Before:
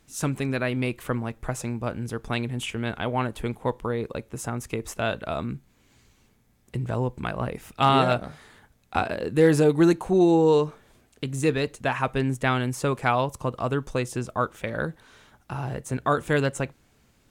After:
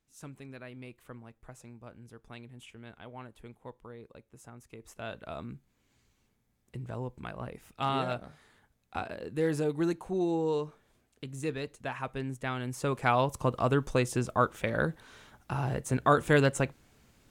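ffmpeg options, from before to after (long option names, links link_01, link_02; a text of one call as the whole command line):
ffmpeg -i in.wav -af "volume=-0.5dB,afade=type=in:start_time=4.72:duration=0.57:silence=0.375837,afade=type=in:start_time=12.56:duration=0.9:silence=0.298538" out.wav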